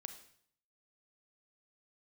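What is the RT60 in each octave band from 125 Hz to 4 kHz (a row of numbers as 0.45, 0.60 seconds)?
0.80, 0.70, 0.60, 0.60, 0.60, 0.60 seconds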